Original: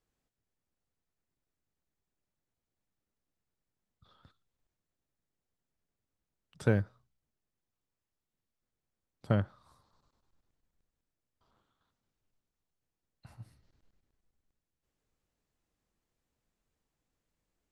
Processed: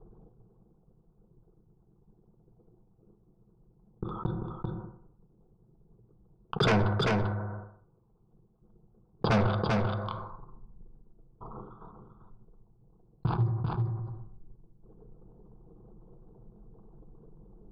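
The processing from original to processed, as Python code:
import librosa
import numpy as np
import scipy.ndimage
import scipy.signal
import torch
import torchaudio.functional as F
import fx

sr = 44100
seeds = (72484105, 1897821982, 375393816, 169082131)

y = fx.envelope_sharpen(x, sr, power=2.0)
y = fx.tube_stage(y, sr, drive_db=23.0, bias=0.5)
y = fx.peak_eq(y, sr, hz=530.0, db=10.0, octaves=0.33)
y = fx.leveller(y, sr, passes=5)
y = scipy.signal.sosfilt(scipy.signal.cheby1(6, 6, 4900.0, 'lowpass', fs=sr, output='sos'), y)
y = fx.fixed_phaser(y, sr, hz=380.0, stages=8)
y = fx.fold_sine(y, sr, drive_db=10, ceiling_db=-20.5)
y = fx.env_lowpass(y, sr, base_hz=630.0, full_db=-35.0)
y = y + 10.0 ** (-9.5 / 20.0) * np.pad(y, (int(392 * sr / 1000.0), 0))[:len(y)]
y = fx.rev_fdn(y, sr, rt60_s=0.61, lf_ratio=0.9, hf_ratio=0.4, size_ms=27.0, drr_db=9.0)
y = fx.env_flatten(y, sr, amount_pct=70)
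y = y * 10.0 ** (-1.5 / 20.0)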